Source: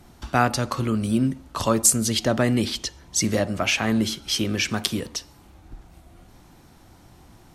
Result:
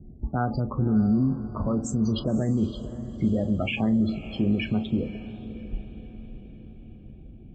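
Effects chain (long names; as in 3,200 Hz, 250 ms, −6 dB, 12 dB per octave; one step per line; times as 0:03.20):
adaptive Wiener filter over 25 samples
low-pass that shuts in the quiet parts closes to 420 Hz, open at −21.5 dBFS
low-pass filter 4,100 Hz 12 dB per octave
low-pass that shuts in the quiet parts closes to 820 Hz, open at −20 dBFS
low-shelf EQ 490 Hz +10.5 dB
brickwall limiter −12 dBFS, peak gain reduction 10.5 dB
spectral peaks only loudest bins 32
feedback delay with all-pass diffusion 559 ms, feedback 51%, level −12.5 dB
on a send at −8 dB: convolution reverb, pre-delay 3 ms
on the sum: one half of a high-frequency compander decoder only
level −4.5 dB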